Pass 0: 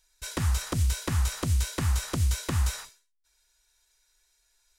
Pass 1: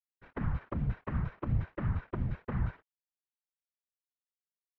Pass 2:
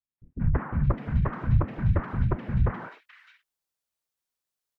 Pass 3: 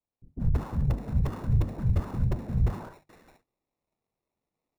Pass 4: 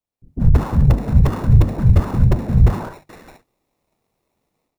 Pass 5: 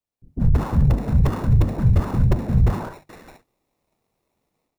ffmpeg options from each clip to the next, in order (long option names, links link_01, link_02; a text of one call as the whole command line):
ffmpeg -i in.wav -af "aeval=exprs='val(0)*gte(abs(val(0)),0.0224)':channel_layout=same,lowpass=frequency=1900:width=0.5412,lowpass=frequency=1900:width=1.3066,afftfilt=real='hypot(re,im)*cos(2*PI*random(0))':imag='hypot(re,im)*sin(2*PI*random(1))':win_size=512:overlap=0.75" out.wav
ffmpeg -i in.wav -filter_complex "[0:a]acrossover=split=250|2300[link_01][link_02][link_03];[link_02]adelay=180[link_04];[link_03]adelay=610[link_05];[link_01][link_04][link_05]amix=inputs=3:normalize=0,volume=9dB" out.wav
ffmpeg -i in.wav -filter_complex "[0:a]bandreject=frequency=50:width_type=h:width=6,bandreject=frequency=100:width_type=h:width=6,bandreject=frequency=150:width_type=h:width=6,acrossover=split=140|1300[link_01][link_02][link_03];[link_02]asoftclip=type=tanh:threshold=-31dB[link_04];[link_03]acrusher=samples=28:mix=1:aa=0.000001[link_05];[link_01][link_04][link_05]amix=inputs=3:normalize=0" out.wav
ffmpeg -i in.wav -af "dynaudnorm=framelen=210:gausssize=3:maxgain=13dB,volume=1.5dB" out.wav
ffmpeg -i in.wav -af "alimiter=limit=-6.5dB:level=0:latency=1:release=42,volume=-2dB" out.wav